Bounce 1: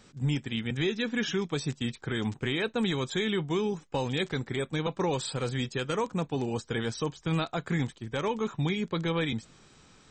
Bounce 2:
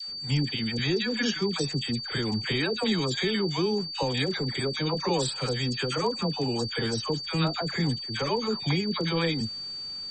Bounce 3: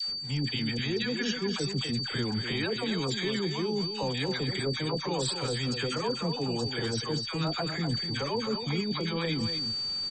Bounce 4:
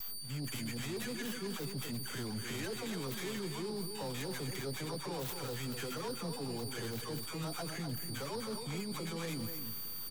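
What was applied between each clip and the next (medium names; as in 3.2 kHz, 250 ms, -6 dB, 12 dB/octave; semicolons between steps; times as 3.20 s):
treble shelf 7.3 kHz +4.5 dB; whistle 4.6 kHz -36 dBFS; phase dispersion lows, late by 85 ms, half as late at 900 Hz; trim +2 dB
reverse; compression 6:1, threshold -33 dBFS, peak gain reduction 11.5 dB; reverse; delay 249 ms -8.5 dB; trim +5 dB
tracing distortion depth 0.36 ms; saturation -26 dBFS, distortion -16 dB; on a send at -17 dB: reverberation RT60 3.5 s, pre-delay 106 ms; on the sum: trim -7 dB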